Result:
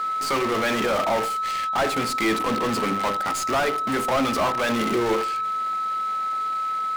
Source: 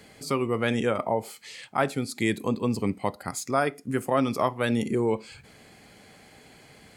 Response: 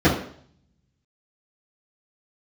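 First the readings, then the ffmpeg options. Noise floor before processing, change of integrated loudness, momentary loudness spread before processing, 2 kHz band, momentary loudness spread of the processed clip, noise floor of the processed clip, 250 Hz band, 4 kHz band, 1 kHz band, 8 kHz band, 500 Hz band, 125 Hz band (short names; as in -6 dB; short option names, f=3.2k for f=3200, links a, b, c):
-53 dBFS, +4.0 dB, 7 LU, +6.5 dB, 3 LU, -26 dBFS, +1.0 dB, +8.5 dB, +9.5 dB, +5.5 dB, +2.5 dB, -4.0 dB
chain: -filter_complex "[0:a]bandreject=f=50:t=h:w=6,bandreject=f=100:t=h:w=6,bandreject=f=150:t=h:w=6,bandreject=f=200:t=h:w=6,bandreject=f=250:t=h:w=6,bandreject=f=300:t=h:w=6,bandreject=f=350:t=h:w=6,bandreject=f=400:t=h:w=6,bandreject=f=450:t=h:w=6,bandreject=f=500:t=h:w=6,acrusher=bits=7:dc=4:mix=0:aa=0.000001,aeval=exprs='val(0)+0.0126*sin(2*PI*1300*n/s)':c=same,asplit=2[a][b];[b]highpass=f=720:p=1,volume=28dB,asoftclip=type=tanh:threshold=-9dB[c];[a][c]amix=inputs=2:normalize=0,lowpass=f=3.7k:p=1,volume=-6dB,asplit=2[d][e];[1:a]atrim=start_sample=2205[f];[e][f]afir=irnorm=-1:irlink=0,volume=-37dB[g];[d][g]amix=inputs=2:normalize=0,volume=-5.5dB"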